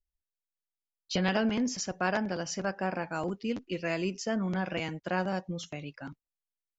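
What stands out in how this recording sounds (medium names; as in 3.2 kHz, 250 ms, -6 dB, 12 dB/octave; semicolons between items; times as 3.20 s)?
noise floor -92 dBFS; spectral tilt -4.5 dB/octave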